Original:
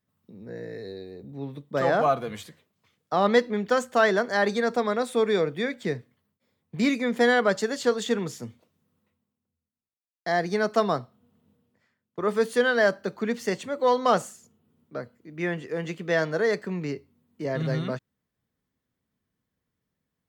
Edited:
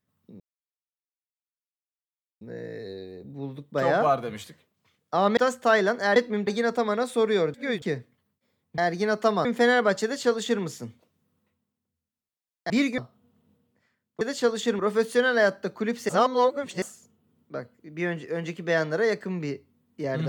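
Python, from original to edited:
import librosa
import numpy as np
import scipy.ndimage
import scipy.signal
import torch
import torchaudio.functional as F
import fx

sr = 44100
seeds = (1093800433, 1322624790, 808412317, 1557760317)

y = fx.edit(x, sr, fx.insert_silence(at_s=0.4, length_s=2.01),
    fx.move(start_s=3.36, length_s=0.31, to_s=4.46),
    fx.reverse_span(start_s=5.53, length_s=0.28),
    fx.swap(start_s=6.77, length_s=0.28, other_s=10.3, other_length_s=0.67),
    fx.duplicate(start_s=7.64, length_s=0.58, to_s=12.2),
    fx.reverse_span(start_s=13.5, length_s=0.73), tone=tone)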